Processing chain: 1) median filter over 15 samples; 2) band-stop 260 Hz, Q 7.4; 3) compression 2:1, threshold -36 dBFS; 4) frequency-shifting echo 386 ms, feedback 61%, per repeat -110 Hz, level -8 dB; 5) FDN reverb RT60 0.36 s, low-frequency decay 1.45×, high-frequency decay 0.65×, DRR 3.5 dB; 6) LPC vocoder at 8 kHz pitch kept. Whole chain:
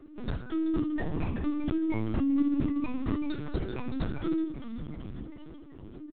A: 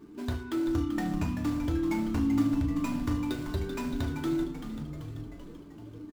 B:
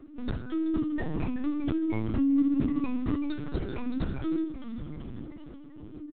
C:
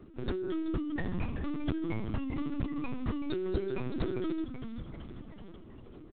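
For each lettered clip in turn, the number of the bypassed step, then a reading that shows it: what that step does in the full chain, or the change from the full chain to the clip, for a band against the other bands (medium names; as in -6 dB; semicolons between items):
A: 6, 4 kHz band +2.5 dB; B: 2, 250 Hz band +2.0 dB; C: 5, 250 Hz band -4.5 dB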